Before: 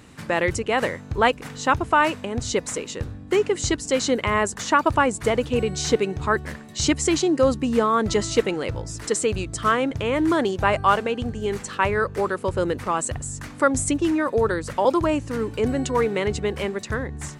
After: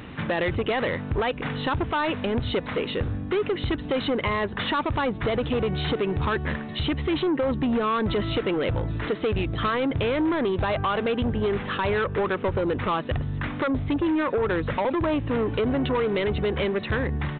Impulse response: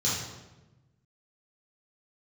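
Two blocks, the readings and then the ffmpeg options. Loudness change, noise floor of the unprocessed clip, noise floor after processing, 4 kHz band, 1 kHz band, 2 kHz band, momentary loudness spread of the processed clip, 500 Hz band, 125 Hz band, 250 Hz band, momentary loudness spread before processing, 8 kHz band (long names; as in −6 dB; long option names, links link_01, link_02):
−3.0 dB, −40 dBFS, −35 dBFS, −1.5 dB, −5.0 dB, −3.5 dB, 4 LU, −3.0 dB, +2.0 dB, −1.5 dB, 8 LU, below −40 dB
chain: -af "alimiter=limit=-14dB:level=0:latency=1:release=28,acompressor=threshold=-25dB:ratio=6,aresample=8000,asoftclip=type=tanh:threshold=-28dB,aresample=44100,volume=8.5dB"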